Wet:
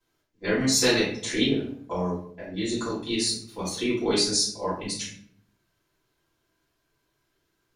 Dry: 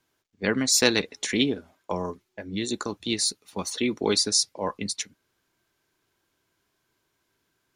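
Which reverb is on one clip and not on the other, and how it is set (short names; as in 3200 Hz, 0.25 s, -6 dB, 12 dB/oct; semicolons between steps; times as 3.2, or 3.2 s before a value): shoebox room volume 76 m³, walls mixed, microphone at 3 m; gain -12.5 dB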